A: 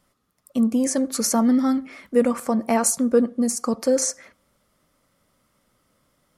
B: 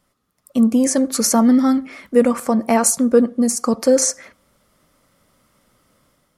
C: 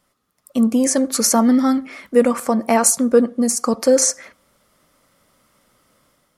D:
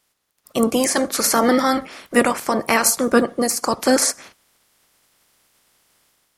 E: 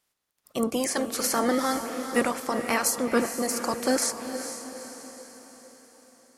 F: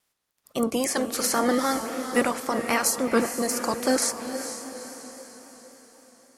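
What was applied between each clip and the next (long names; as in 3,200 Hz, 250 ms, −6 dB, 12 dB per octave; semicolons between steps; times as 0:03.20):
automatic gain control gain up to 6.5 dB
low-shelf EQ 260 Hz −5.5 dB; level +1.5 dB
ceiling on every frequency bin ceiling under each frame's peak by 19 dB; level −1.5 dB
feedback delay with all-pass diffusion 453 ms, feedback 51%, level −9 dB; level −8.5 dB
pitch vibrato 3.7 Hz 47 cents; level +1.5 dB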